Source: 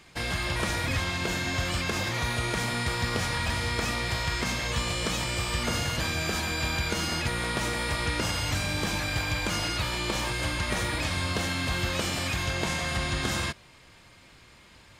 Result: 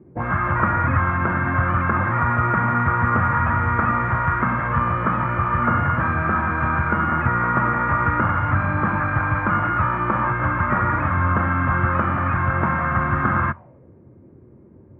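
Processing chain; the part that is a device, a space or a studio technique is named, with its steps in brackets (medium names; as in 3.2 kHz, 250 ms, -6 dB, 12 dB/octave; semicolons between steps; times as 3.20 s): envelope filter bass rig (touch-sensitive low-pass 370–1300 Hz up, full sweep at -27 dBFS; cabinet simulation 86–2200 Hz, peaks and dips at 88 Hz +7 dB, 130 Hz +5 dB, 220 Hz +4 dB, 440 Hz -8 dB, 710 Hz -4 dB); trim +7 dB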